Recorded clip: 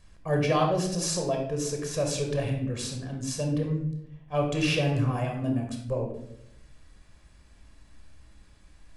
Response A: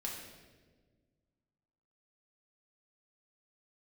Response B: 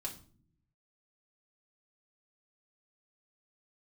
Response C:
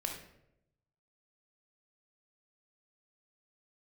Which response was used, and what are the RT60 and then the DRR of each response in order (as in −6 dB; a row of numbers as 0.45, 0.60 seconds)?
C; 1.5, 0.50, 0.80 seconds; −3.0, −2.5, 2.0 decibels